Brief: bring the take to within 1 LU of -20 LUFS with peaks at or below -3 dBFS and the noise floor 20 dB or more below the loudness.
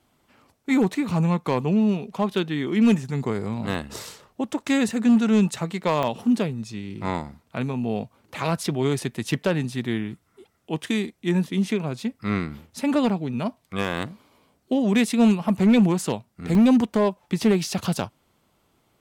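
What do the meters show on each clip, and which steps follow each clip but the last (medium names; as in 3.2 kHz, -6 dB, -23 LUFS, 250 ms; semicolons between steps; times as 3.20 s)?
clipped samples 0.8%; clipping level -12.0 dBFS; dropouts 3; longest dropout 1.4 ms; loudness -23.5 LUFS; peak level -12.0 dBFS; loudness target -20.0 LUFS
-> clip repair -12 dBFS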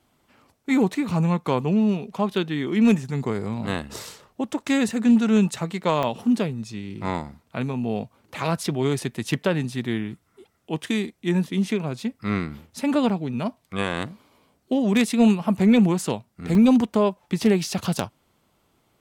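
clipped samples 0.0%; dropouts 3; longest dropout 1.4 ms
-> interpolate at 4.91/6.03/16.55 s, 1.4 ms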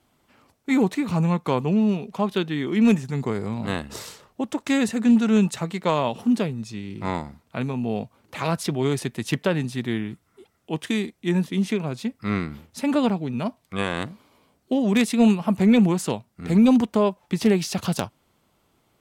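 dropouts 0; loudness -23.5 LUFS; peak level -3.0 dBFS; loudness target -20.0 LUFS
-> trim +3.5 dB; peak limiter -3 dBFS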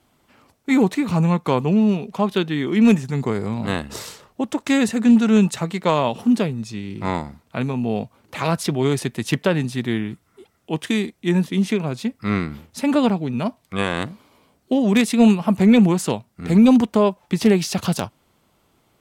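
loudness -20.0 LUFS; peak level -3.0 dBFS; noise floor -64 dBFS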